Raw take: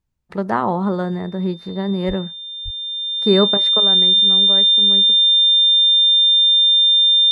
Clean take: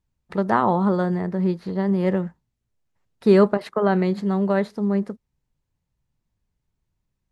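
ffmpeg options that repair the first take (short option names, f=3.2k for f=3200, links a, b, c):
-filter_complex "[0:a]bandreject=f=3.6k:w=30,asplit=3[a][b][c];[a]afade=t=out:st=2.07:d=0.02[d];[b]highpass=f=140:w=0.5412,highpass=f=140:w=1.3066,afade=t=in:st=2.07:d=0.02,afade=t=out:st=2.19:d=0.02[e];[c]afade=t=in:st=2.19:d=0.02[f];[d][e][f]amix=inputs=3:normalize=0,asplit=3[g][h][i];[g]afade=t=out:st=2.64:d=0.02[j];[h]highpass=f=140:w=0.5412,highpass=f=140:w=1.3066,afade=t=in:st=2.64:d=0.02,afade=t=out:st=2.76:d=0.02[k];[i]afade=t=in:st=2.76:d=0.02[l];[j][k][l]amix=inputs=3:normalize=0,asetnsamples=n=441:p=0,asendcmd='3.8 volume volume 7.5dB',volume=0dB"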